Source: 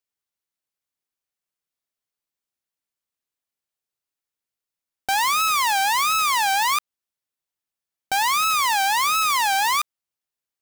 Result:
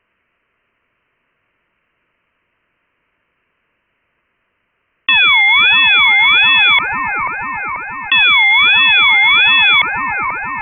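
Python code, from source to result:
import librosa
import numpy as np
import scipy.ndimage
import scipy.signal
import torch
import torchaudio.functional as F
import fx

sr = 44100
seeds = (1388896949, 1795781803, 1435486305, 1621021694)

y = scipy.signal.sosfilt(scipy.signal.butter(2, 660.0, 'highpass', fs=sr, output='sos'), x)
y = fx.notch(y, sr, hz=2600.0, q=12.0)
y = fx.leveller(y, sr, passes=5)
y = fx.air_absorb(y, sr, metres=260.0)
y = fx.echo_wet_highpass(y, sr, ms=487, feedback_pct=47, hz=2600.0, wet_db=-4.5)
y = fx.freq_invert(y, sr, carrier_hz=3400)
y = fx.env_flatten(y, sr, amount_pct=50)
y = y * 10.0 ** (4.0 / 20.0)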